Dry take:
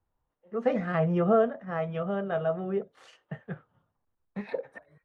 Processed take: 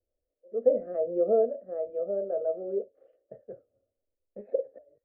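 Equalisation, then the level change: synth low-pass 570 Hz, resonance Q 5.4; air absorption 70 m; fixed phaser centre 390 Hz, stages 4; -5.5 dB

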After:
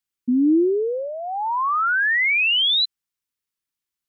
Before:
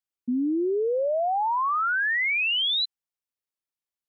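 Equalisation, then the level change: dynamic EQ 320 Hz, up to +5 dB, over -39 dBFS, Q 3.1; bell 640 Hz -12 dB 0.81 oct; +6.0 dB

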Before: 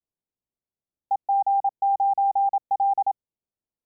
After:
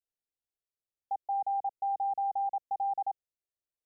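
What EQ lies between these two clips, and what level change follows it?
fixed phaser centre 510 Hz, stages 4; -6.0 dB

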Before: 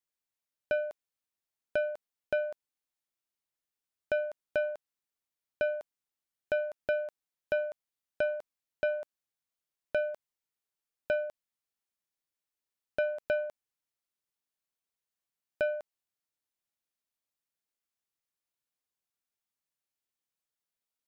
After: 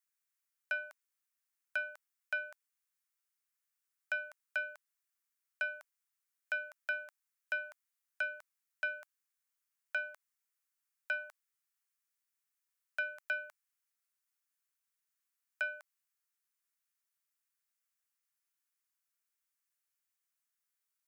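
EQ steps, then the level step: HPF 1200 Hz 24 dB/oct; bell 3600 Hz -7.5 dB 1.2 oct; +5.0 dB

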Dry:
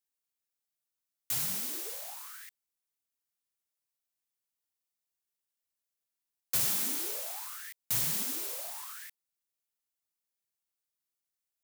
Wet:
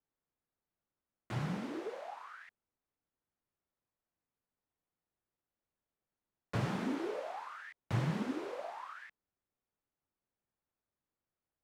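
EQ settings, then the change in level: LPF 1500 Hz 12 dB/oct; low shelf 500 Hz +7.5 dB; +4.5 dB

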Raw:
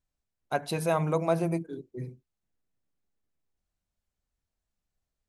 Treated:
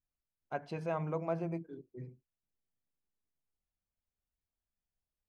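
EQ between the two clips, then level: air absorption 160 m; notch 3800 Hz, Q 6.1; -8.5 dB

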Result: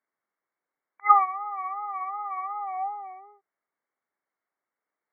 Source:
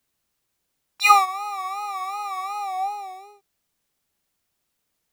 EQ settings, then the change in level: HPF 360 Hz 12 dB/oct; brick-wall FIR low-pass 2300 Hz; bell 1200 Hz +3 dB; -5.0 dB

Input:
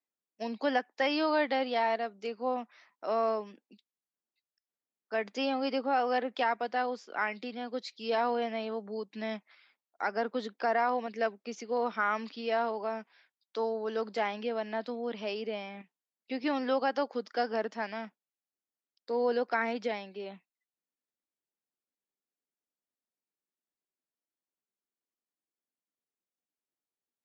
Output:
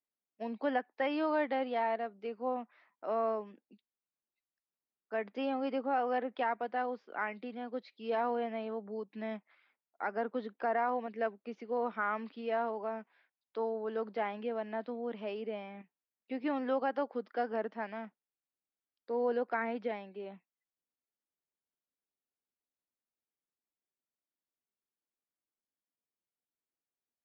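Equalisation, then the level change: LPF 3700 Hz 6 dB/oct; air absorption 300 m; -2.0 dB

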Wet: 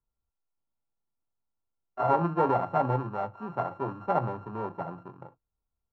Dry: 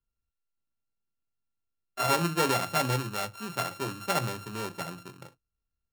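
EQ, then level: synth low-pass 900 Hz, resonance Q 2.2; 0.0 dB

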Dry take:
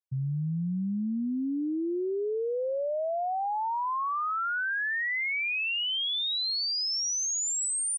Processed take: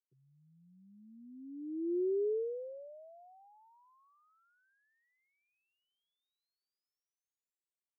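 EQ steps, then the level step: Butterworth band-pass 390 Hz, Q 3.4; -2.0 dB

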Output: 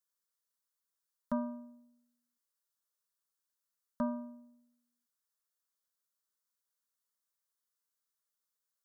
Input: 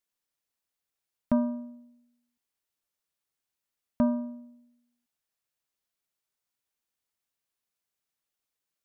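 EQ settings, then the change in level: low shelf 490 Hz -11 dB; fixed phaser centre 490 Hz, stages 8; 0.0 dB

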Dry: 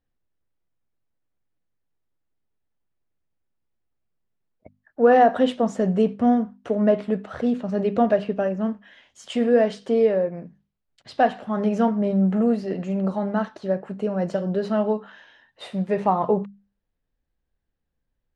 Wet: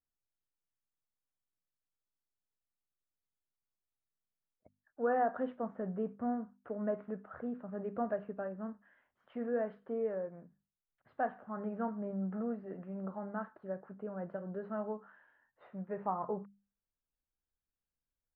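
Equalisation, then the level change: ladder low-pass 1700 Hz, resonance 45%; -8.5 dB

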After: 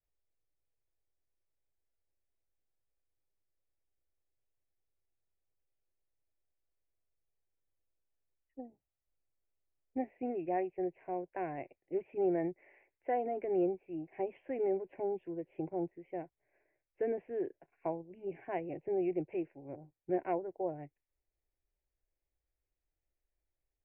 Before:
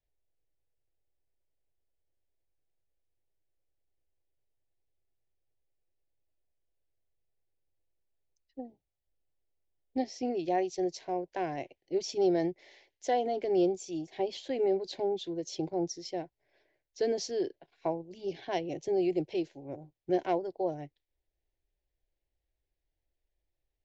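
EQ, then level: steep low-pass 2600 Hz 96 dB/oct; -4.5 dB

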